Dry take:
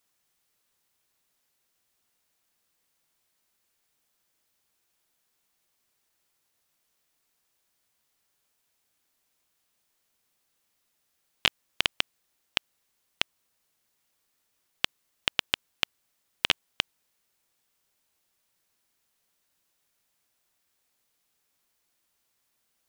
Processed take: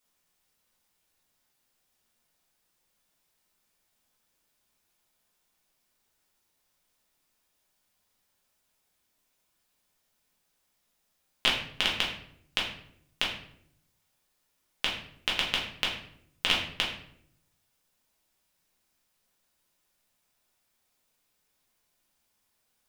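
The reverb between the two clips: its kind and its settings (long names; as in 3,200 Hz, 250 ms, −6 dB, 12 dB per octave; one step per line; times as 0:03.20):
rectangular room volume 120 cubic metres, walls mixed, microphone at 1.4 metres
level −4.5 dB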